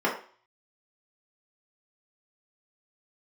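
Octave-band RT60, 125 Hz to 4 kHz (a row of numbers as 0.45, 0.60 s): 0.30, 0.40, 0.40, 0.45, 0.45, 0.45 s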